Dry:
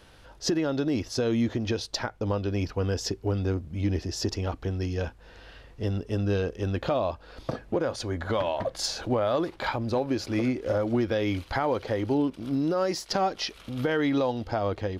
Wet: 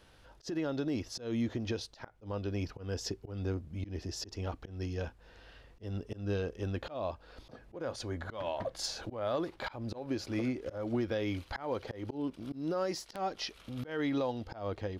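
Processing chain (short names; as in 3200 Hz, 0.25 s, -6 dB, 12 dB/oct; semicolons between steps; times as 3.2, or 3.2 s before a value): wrapped overs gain 14.5 dB; auto swell 0.169 s; gain -7 dB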